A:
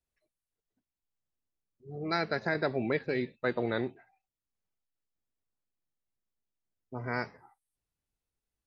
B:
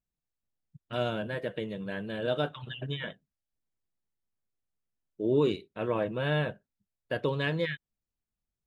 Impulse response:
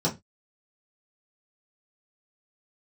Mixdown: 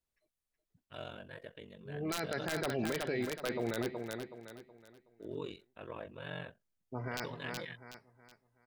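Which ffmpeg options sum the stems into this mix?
-filter_complex "[0:a]aeval=exprs='(mod(7.94*val(0)+1,2)-1)/7.94':c=same,volume=0.891,asplit=2[s0][s1];[s1]volume=0.355[s2];[1:a]equalizer=f=260:t=o:w=2.8:g=-6.5,aeval=exprs='val(0)*sin(2*PI*23*n/s)':c=same,volume=0.376[s3];[s2]aecho=0:1:372|744|1116|1488|1860:1|0.35|0.122|0.0429|0.015[s4];[s0][s3][s4]amix=inputs=3:normalize=0,alimiter=level_in=1.26:limit=0.0631:level=0:latency=1:release=15,volume=0.794"

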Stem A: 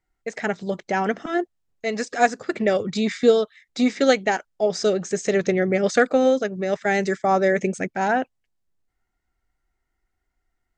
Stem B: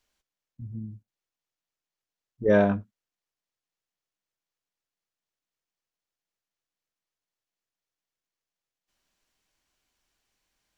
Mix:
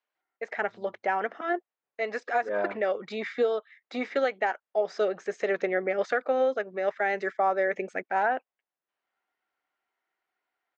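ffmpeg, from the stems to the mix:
-filter_complex "[0:a]adelay=150,volume=0.944[s0];[1:a]volume=0.668[s1];[s0][s1]amix=inputs=2:normalize=0,highpass=550,lowpass=2100,alimiter=limit=0.158:level=0:latency=1:release=242"

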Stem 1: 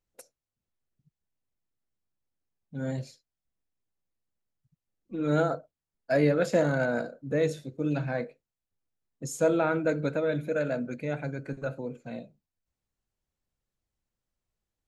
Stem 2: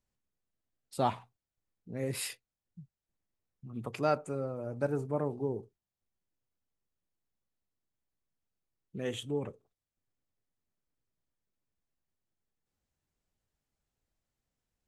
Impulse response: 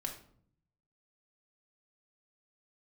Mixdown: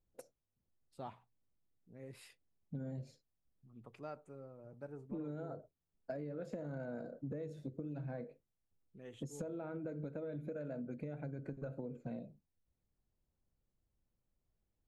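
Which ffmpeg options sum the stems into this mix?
-filter_complex "[0:a]tiltshelf=f=970:g=7.5,acompressor=threshold=0.0316:ratio=6,volume=0.668[s0];[1:a]highshelf=f=4800:g=-10,volume=0.15[s1];[s0][s1]amix=inputs=2:normalize=0,acompressor=threshold=0.01:ratio=6"

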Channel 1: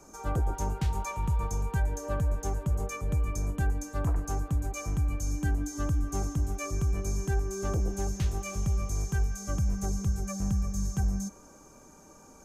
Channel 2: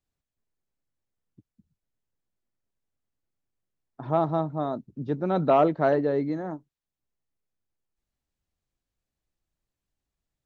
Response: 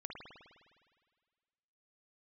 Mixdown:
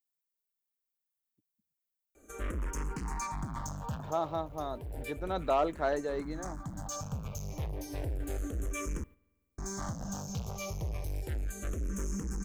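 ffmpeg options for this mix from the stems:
-filter_complex "[0:a]asoftclip=type=hard:threshold=0.0188,asplit=2[s0][s1];[s1]afreqshift=-0.32[s2];[s0][s2]amix=inputs=2:normalize=1,adelay=2150,volume=1.41,asplit=3[s3][s4][s5];[s3]atrim=end=9.04,asetpts=PTS-STARTPTS,afade=t=out:st=9.036:d=0.004:c=hsin[s6];[s4]atrim=start=9.04:end=9.58,asetpts=PTS-STARTPTS,volume=0[s7];[s5]atrim=start=9.58,asetpts=PTS-STARTPTS,afade=t=in:d=0.004:c=hsin[s8];[s6][s7][s8]concat=n=3:v=0:a=1,asplit=2[s9][s10];[s10]volume=0.141[s11];[1:a]aemphasis=mode=production:type=riaa,acontrast=78,volume=0.224,asplit=2[s12][s13];[s13]apad=whole_len=643670[s14];[s9][s14]sidechaincompress=threshold=0.00794:ratio=3:attack=5.1:release=628[s15];[2:a]atrim=start_sample=2205[s16];[s11][s16]afir=irnorm=-1:irlink=0[s17];[s15][s12][s17]amix=inputs=3:normalize=0,agate=range=0.398:threshold=0.00398:ratio=16:detection=peak"

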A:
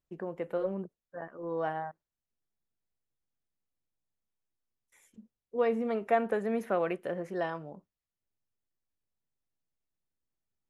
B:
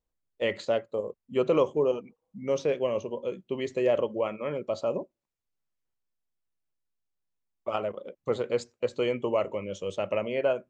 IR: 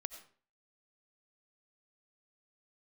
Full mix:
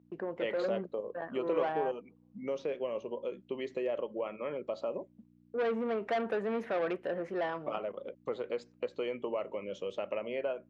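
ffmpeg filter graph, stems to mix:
-filter_complex "[0:a]agate=range=0.0501:threshold=0.00355:ratio=16:detection=peak,asoftclip=type=tanh:threshold=0.0316,volume=1.41[s0];[1:a]acompressor=threshold=0.0178:ratio=2.5,aeval=exprs='val(0)+0.00251*(sin(2*PI*60*n/s)+sin(2*PI*2*60*n/s)/2+sin(2*PI*3*60*n/s)/3+sin(2*PI*4*60*n/s)/4+sin(2*PI*5*60*n/s)/5)':c=same,volume=1[s1];[s0][s1]amix=inputs=2:normalize=0,highpass=230,lowpass=3900"

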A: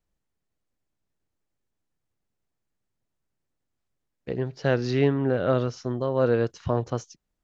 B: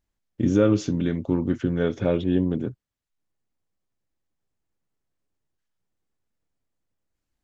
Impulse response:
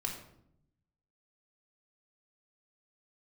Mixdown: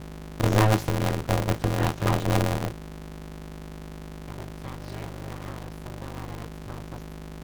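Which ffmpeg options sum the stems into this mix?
-filter_complex "[0:a]highpass=f=59:w=0.5412,highpass=f=59:w=1.3066,equalizer=f=250:w=5.7:g=-12,acompressor=threshold=0.0562:ratio=6,volume=0.316[s0];[1:a]volume=0.891[s1];[s0][s1]amix=inputs=2:normalize=0,aeval=exprs='abs(val(0))':c=same,aeval=exprs='val(0)+0.0126*(sin(2*PI*50*n/s)+sin(2*PI*2*50*n/s)/2+sin(2*PI*3*50*n/s)/3+sin(2*PI*4*50*n/s)/4+sin(2*PI*5*50*n/s)/5)':c=same,aeval=exprs='val(0)*sgn(sin(2*PI*110*n/s))':c=same"

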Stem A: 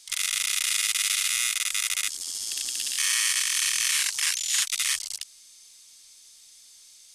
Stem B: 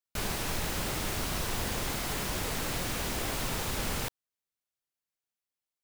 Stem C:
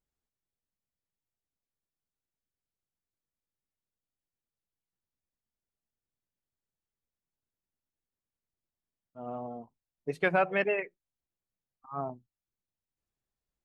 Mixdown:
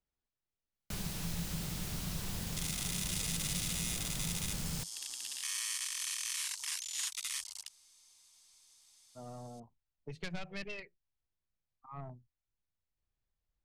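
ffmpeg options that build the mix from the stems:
-filter_complex "[0:a]equalizer=f=940:w=2:g=10.5,adelay=2450,volume=0.237[s0];[1:a]equalizer=f=170:t=o:w=0.47:g=14,adelay=750,volume=0.501[s1];[2:a]lowpass=5300,asubboost=boost=2.5:cutoff=130,aeval=exprs='(tanh(14.1*val(0)+0.4)-tanh(0.4))/14.1':c=same,volume=0.944[s2];[s0][s1][s2]amix=inputs=3:normalize=0,acrossover=split=170|3000[s3][s4][s5];[s4]acompressor=threshold=0.00447:ratio=6[s6];[s3][s6][s5]amix=inputs=3:normalize=0"

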